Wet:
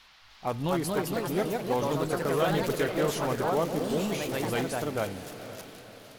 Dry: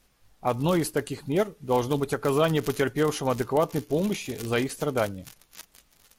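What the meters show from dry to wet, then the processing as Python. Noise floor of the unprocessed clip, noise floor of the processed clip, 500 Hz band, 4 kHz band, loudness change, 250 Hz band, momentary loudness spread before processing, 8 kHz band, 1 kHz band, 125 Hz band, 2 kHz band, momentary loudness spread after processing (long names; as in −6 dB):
−64 dBFS, −55 dBFS, −2.5 dB, −1.0 dB, −2.5 dB, −3.0 dB, 7 LU, −1.5 dB, −1.5 dB, −3.5 dB, −1.5 dB, 14 LU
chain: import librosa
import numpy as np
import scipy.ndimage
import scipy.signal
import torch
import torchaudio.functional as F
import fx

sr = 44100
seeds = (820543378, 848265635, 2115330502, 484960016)

p1 = fx.dmg_noise_band(x, sr, seeds[0], low_hz=710.0, high_hz=4700.0, level_db=-54.0)
p2 = 10.0 ** (-28.5 / 20.0) * (np.abs((p1 / 10.0 ** (-28.5 / 20.0) + 3.0) % 4.0 - 2.0) - 1.0)
p3 = p1 + (p2 * 10.0 ** (-11.0 / 20.0))
p4 = fx.echo_pitch(p3, sr, ms=303, semitones=2, count=3, db_per_echo=-3.0)
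p5 = fx.echo_diffused(p4, sr, ms=500, feedback_pct=46, wet_db=-12.0)
y = p5 * 10.0 ** (-5.5 / 20.0)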